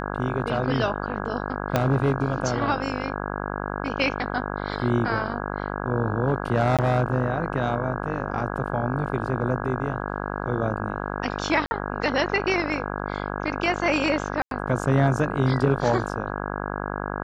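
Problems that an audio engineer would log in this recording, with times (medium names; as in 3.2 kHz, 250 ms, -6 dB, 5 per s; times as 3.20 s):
buzz 50 Hz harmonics 33 -30 dBFS
1.76 s: pop -7 dBFS
6.77–6.79 s: dropout 17 ms
11.66–11.71 s: dropout 50 ms
14.42–14.51 s: dropout 92 ms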